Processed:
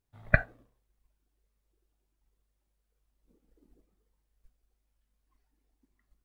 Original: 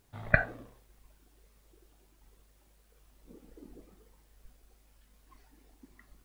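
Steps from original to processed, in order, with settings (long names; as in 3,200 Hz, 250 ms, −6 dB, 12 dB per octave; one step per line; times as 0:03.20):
low-shelf EQ 110 Hz +6 dB
expander for the loud parts 1.5 to 1, over −54 dBFS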